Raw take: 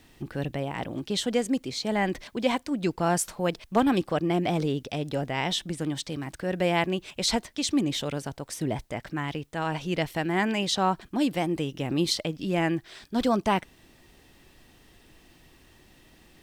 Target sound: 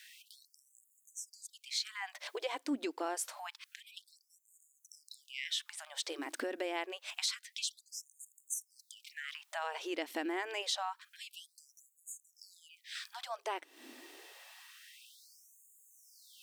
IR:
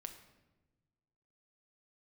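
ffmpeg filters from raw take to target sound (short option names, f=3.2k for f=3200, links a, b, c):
-af "acompressor=threshold=-36dB:ratio=12,asubboost=boost=3.5:cutoff=210,afftfilt=real='re*gte(b*sr/1024,250*pow(6600/250,0.5+0.5*sin(2*PI*0.27*pts/sr)))':imag='im*gte(b*sr/1024,250*pow(6600/250,0.5+0.5*sin(2*PI*0.27*pts/sr)))':win_size=1024:overlap=0.75,volume=5dB"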